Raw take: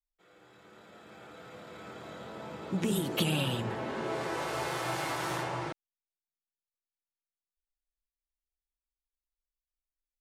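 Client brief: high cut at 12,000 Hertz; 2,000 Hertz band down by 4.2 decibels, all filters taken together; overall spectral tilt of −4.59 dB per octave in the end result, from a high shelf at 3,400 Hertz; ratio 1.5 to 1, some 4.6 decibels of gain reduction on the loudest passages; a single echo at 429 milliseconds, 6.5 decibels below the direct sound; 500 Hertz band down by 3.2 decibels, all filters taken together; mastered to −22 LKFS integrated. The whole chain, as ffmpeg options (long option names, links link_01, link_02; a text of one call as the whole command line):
ffmpeg -i in.wav -af "lowpass=12000,equalizer=frequency=500:width_type=o:gain=-4,equalizer=frequency=2000:width_type=o:gain=-4,highshelf=frequency=3400:gain=-4.5,acompressor=threshold=-40dB:ratio=1.5,aecho=1:1:429:0.473,volume=17dB" out.wav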